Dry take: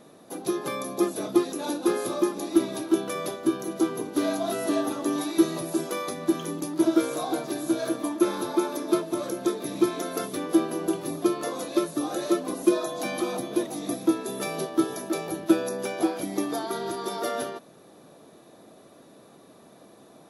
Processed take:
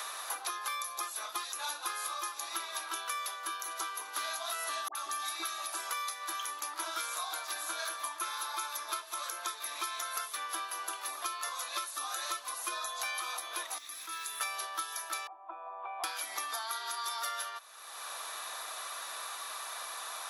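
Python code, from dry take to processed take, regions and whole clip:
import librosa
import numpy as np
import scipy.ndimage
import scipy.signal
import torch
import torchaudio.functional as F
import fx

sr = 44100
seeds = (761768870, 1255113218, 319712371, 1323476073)

y = fx.chain(x, sr, fx.notch_comb(f0_hz=490.0),
    fx.dispersion(late='highs', ms=71.0, hz=1100.0), at=(4.88, 5.73))
y = fx.chain(y, sr, fx.tone_stack(knobs='6-0-2'),
    fx.quant_dither(seeds[0], bits=12, dither='none'),
    fx.env_flatten(amount_pct=50), at=(13.78, 14.41))
y = fx.chain(y, sr, fx.formant_cascade(vowel='a'),
    fx.peak_eq(hz=350.0, db=13.5, octaves=0.49),
    fx.band_squash(depth_pct=40), at=(15.27, 16.04))
y = scipy.signal.sosfilt(scipy.signal.cheby1(3, 1.0, 1100.0, 'highpass', fs=sr, output='sos'), y)
y = fx.band_squash(y, sr, depth_pct=100)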